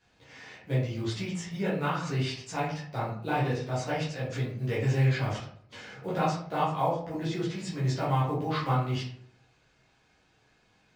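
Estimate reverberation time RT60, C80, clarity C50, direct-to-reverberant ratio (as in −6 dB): 0.60 s, 8.5 dB, 4.0 dB, −9.0 dB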